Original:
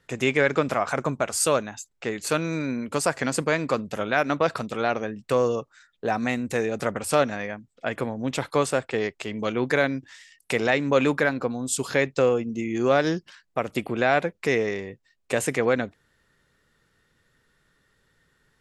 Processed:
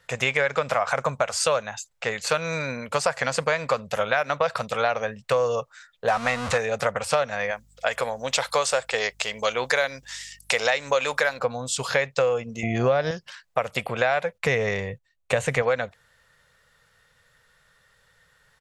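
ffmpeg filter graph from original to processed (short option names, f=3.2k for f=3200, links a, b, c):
-filter_complex "[0:a]asettb=1/sr,asplit=3[a][b][c];[a]atrim=end=6.084[d];[b]atrim=start=6.08:end=6.58,asetpts=PTS-STARTPTS,afade=t=in:d=0.004:c=qsin,afade=t=out:st=0.496:d=0.004:c=qsin,aeval=exprs='val(0)+0.5*0.0447*sgn(val(0))':c=same,lowpass=f=10k:w=0.5412,lowpass=f=10k:w=1.3066,equalizer=f=1.2k:w=3.5:g=8[e];[c]atrim=start=6.576[f];[d][e]acrossfade=d=0.004:c1=hsin:c2=qsin[g];[g][f]acrossfade=d=0.004:c1=qsin:c2=hsin,asettb=1/sr,asplit=3[h][i][j];[h]atrim=end=7.514[k];[i]atrim=start=7.51:end=11.39,asetpts=PTS-STARTPTS,afade=t=in:d=0.004:c=qsin,afade=t=out:st=3.876:d=0.004:c=qsin,bass=f=250:g=-10,treble=f=4k:g=12,aeval=exprs='val(0)+0.00126*(sin(2*PI*50*n/s)+sin(2*PI*2*50*n/s)/2+sin(2*PI*3*50*n/s)/3+sin(2*PI*4*50*n/s)/4+sin(2*PI*5*50*n/s)/5)':c=same[l];[j]atrim=start=11.386[m];[k][l]acrossfade=d=0.004:c1=hsin:c2=qsin[n];[n][m]acrossfade=d=0.004:c1=qsin:c2=hsin,asettb=1/sr,asplit=3[o][p][q];[o]atrim=end=12.634[r];[p]atrim=start=12.63:end=13.11,asetpts=PTS-STARTPTS,afade=t=in:d=0.004:c=qsin,afade=t=out:st=0.476:d=0.004:c=qsin,lowpass=f=5.5k:w=0.5412,lowpass=f=5.5k:w=1.3066,lowshelf=f=450:g=11.5,aeval=exprs='val(0)+0.01*sin(2*PI*690*n/s)':c=same[s];[q]atrim=start=13.106[t];[r][s]acrossfade=d=0.004:c1=hsin:c2=qsin[u];[u][t]acrossfade=d=0.004:c1=qsin:c2=hsin,asettb=1/sr,asplit=3[v][w][x];[v]atrim=end=14.384[y];[w]atrim=start=14.38:end=15.62,asetpts=PTS-STARTPTS,afade=t=in:d=0.004:c=qsin,afade=t=out:st=1.236:d=0.004:c=qsin,agate=range=-12dB:threshold=-54dB:ratio=16:release=100:detection=peak,lowshelf=f=250:g=11,bandreject=f=5.1k:w=8[z];[x]atrim=start=15.616[aa];[y][z]acrossfade=d=0.004:c1=hsin:c2=qsin[ab];[ab][aa]acrossfade=d=0.004:c1=qsin:c2=hsin,acrossover=split=6600[ac][ad];[ad]acompressor=threshold=-50dB:ratio=4:attack=1:release=60[ae];[ac][ae]amix=inputs=2:normalize=0,firequalizer=gain_entry='entry(130,0);entry(320,-16);entry(500,5)':delay=0.05:min_phase=1,acompressor=threshold=-20dB:ratio=6,volume=1.5dB"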